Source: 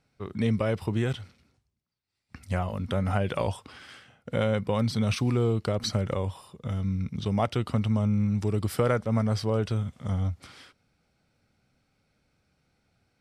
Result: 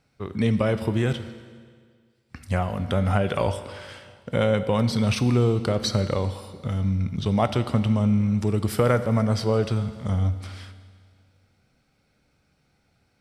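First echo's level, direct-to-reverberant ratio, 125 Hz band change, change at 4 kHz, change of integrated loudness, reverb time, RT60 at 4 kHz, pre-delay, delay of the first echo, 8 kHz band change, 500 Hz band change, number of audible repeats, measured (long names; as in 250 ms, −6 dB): no echo audible, 11.0 dB, +4.0 dB, +4.5 dB, +4.0 dB, 1.9 s, 1.8 s, 14 ms, no echo audible, +4.0 dB, +4.5 dB, no echo audible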